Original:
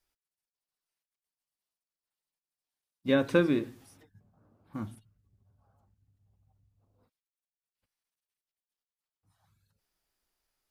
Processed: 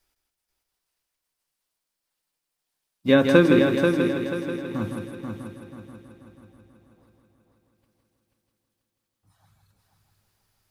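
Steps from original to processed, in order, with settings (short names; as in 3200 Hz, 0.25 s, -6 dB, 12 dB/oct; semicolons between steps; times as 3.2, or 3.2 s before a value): multi-head echo 0.162 s, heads first and third, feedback 58%, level -6 dB; gain +8 dB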